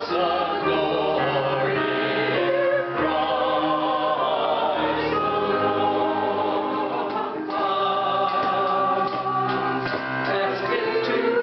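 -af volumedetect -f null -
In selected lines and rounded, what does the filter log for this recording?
mean_volume: -22.7 dB
max_volume: -11.4 dB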